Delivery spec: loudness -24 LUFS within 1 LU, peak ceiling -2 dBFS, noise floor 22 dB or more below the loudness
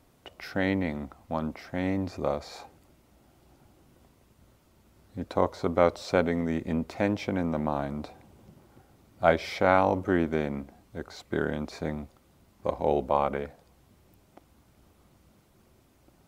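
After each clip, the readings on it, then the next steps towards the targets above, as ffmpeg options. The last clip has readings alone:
loudness -29.0 LUFS; peak level -5.0 dBFS; loudness target -24.0 LUFS
-> -af "volume=1.78,alimiter=limit=0.794:level=0:latency=1"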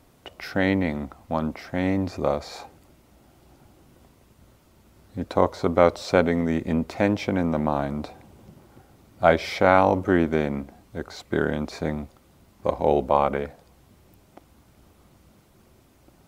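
loudness -24.0 LUFS; peak level -2.0 dBFS; noise floor -58 dBFS

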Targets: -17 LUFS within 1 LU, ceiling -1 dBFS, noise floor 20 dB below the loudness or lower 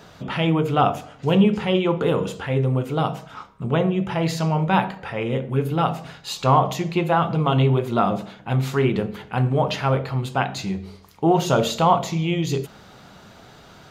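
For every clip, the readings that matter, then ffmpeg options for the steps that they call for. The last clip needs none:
loudness -22.0 LUFS; peak level -4.5 dBFS; loudness target -17.0 LUFS
-> -af "volume=1.78,alimiter=limit=0.891:level=0:latency=1"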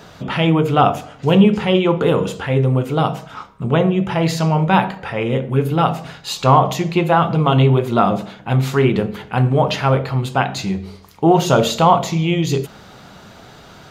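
loudness -17.0 LUFS; peak level -1.0 dBFS; noise floor -42 dBFS

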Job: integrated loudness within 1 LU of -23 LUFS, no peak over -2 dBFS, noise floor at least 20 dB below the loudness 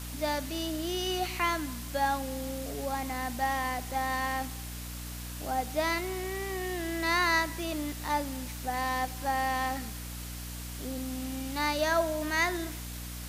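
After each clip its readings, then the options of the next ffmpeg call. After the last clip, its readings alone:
hum 60 Hz; highest harmonic 300 Hz; hum level -39 dBFS; noise floor -40 dBFS; noise floor target -52 dBFS; loudness -31.5 LUFS; peak level -15.0 dBFS; loudness target -23.0 LUFS
-> -af "bandreject=f=60:t=h:w=6,bandreject=f=120:t=h:w=6,bandreject=f=180:t=h:w=6,bandreject=f=240:t=h:w=6,bandreject=f=300:t=h:w=6"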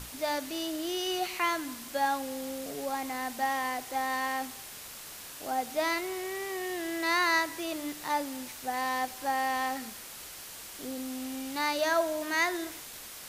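hum not found; noise floor -45 dBFS; noise floor target -52 dBFS
-> -af "afftdn=nr=7:nf=-45"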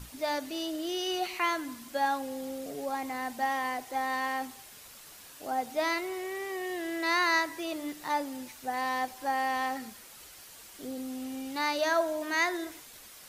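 noise floor -51 dBFS; noise floor target -52 dBFS
-> -af "afftdn=nr=6:nf=-51"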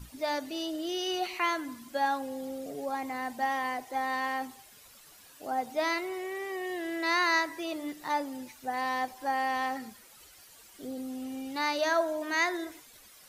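noise floor -55 dBFS; loudness -32.0 LUFS; peak level -15.5 dBFS; loudness target -23.0 LUFS
-> -af "volume=2.82"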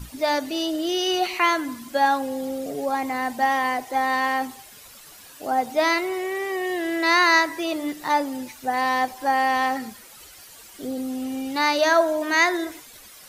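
loudness -23.0 LUFS; peak level -6.5 dBFS; noise floor -46 dBFS

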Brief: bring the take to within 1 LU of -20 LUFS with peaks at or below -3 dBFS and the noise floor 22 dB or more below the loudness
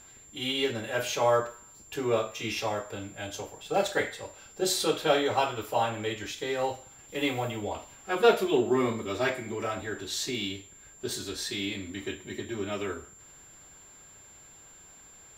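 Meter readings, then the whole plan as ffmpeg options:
steady tone 7.3 kHz; tone level -51 dBFS; loudness -30.0 LUFS; peak level -8.5 dBFS; loudness target -20.0 LUFS
-> -af "bandreject=f=7300:w=30"
-af "volume=3.16,alimiter=limit=0.708:level=0:latency=1"

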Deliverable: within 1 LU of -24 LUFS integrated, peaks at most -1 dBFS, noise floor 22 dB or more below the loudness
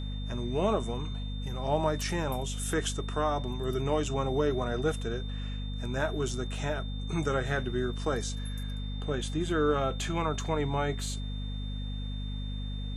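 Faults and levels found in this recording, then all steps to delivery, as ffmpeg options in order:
hum 50 Hz; highest harmonic 250 Hz; hum level -32 dBFS; steady tone 3.6 kHz; tone level -46 dBFS; loudness -32.0 LUFS; peak level -14.0 dBFS; loudness target -24.0 LUFS
-> -af "bandreject=f=50:t=h:w=6,bandreject=f=100:t=h:w=6,bandreject=f=150:t=h:w=6,bandreject=f=200:t=h:w=6,bandreject=f=250:t=h:w=6"
-af "bandreject=f=3600:w=30"
-af "volume=2.51"

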